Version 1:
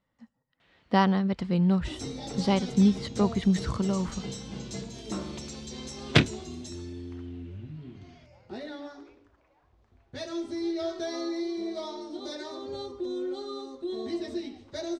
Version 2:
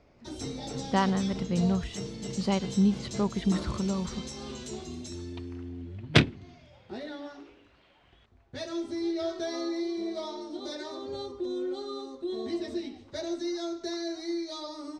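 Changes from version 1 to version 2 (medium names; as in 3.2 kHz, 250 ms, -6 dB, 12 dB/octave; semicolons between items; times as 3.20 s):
speech -3.0 dB; first sound: entry -1.60 s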